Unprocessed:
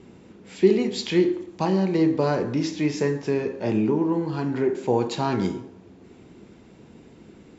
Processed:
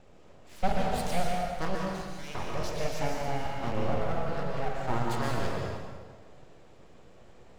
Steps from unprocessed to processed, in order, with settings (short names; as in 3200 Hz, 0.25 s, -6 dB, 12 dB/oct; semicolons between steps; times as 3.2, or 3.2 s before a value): 1.75–2.35 HPF 1100 Hz 24 dB/oct; full-wave rectifier; plate-style reverb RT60 1.6 s, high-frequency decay 0.85×, pre-delay 0.105 s, DRR -1 dB; gain -7 dB